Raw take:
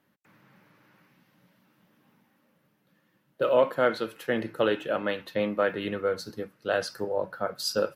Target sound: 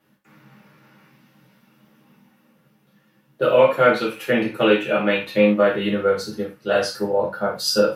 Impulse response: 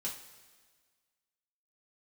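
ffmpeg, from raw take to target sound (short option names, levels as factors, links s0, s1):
-filter_complex "[0:a]asettb=1/sr,asplit=3[s0][s1][s2];[s0]atrim=end=3.534[s3];[s1]atrim=start=3.53:end=5.43,asetpts=PTS-STARTPTS,afade=t=in:d=0.004:c=qsin,afade=t=out:st=1.896:d=0.004:c=qsin,equalizer=f=2400:w=7.9:g=14[s4];[s2]atrim=start=5.426[s5];[s3][s4]acrossfade=d=0.004:c1=hsin:c2=qsin[s6];[s6][s5]acrossfade=d=0.004:c1=qsin:c2=hsin[s7];[1:a]atrim=start_sample=2205,atrim=end_sample=4410,asetrate=40572,aresample=44100[s8];[s7][s8]afir=irnorm=-1:irlink=0,volume=2.11"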